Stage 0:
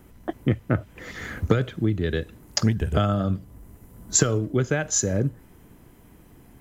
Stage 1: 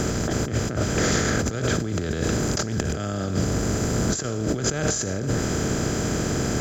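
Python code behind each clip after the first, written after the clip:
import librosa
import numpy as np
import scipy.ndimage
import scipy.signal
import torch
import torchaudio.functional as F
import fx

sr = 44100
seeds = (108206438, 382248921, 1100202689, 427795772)

y = fx.bin_compress(x, sr, power=0.4)
y = fx.over_compress(y, sr, threshold_db=-24.0, ratio=-1.0)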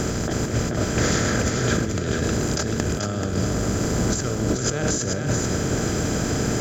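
y = fx.echo_feedback(x, sr, ms=434, feedback_pct=27, wet_db=-5)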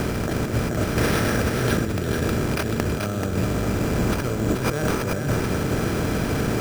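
y = np.repeat(x[::6], 6)[:len(x)]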